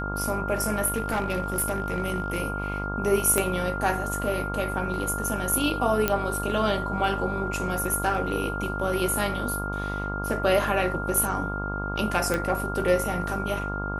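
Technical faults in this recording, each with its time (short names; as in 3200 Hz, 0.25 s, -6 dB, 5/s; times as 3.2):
buzz 50 Hz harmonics 29 -32 dBFS
tone 1400 Hz -32 dBFS
0.86–2.42 clipped -21 dBFS
3.38 pop -9 dBFS
6.08 pop -7 dBFS
12.34 pop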